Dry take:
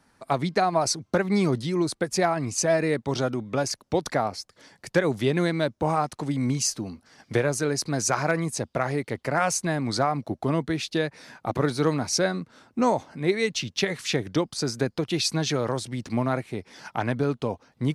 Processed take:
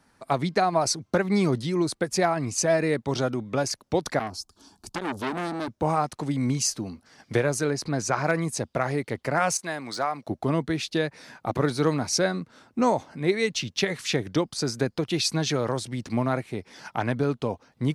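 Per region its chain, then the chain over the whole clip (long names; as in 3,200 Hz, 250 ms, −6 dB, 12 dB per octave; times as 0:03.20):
0:04.19–0:05.68: bass and treble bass +10 dB, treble +3 dB + phaser with its sweep stopped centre 530 Hz, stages 6 + saturating transformer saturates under 1,700 Hz
0:07.70–0:08.24: high-shelf EQ 5,400 Hz −10.5 dB + upward compression, threshold −28 dBFS
0:09.57–0:10.27: de-essing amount 65% + high-pass filter 750 Hz 6 dB per octave
whole clip: no processing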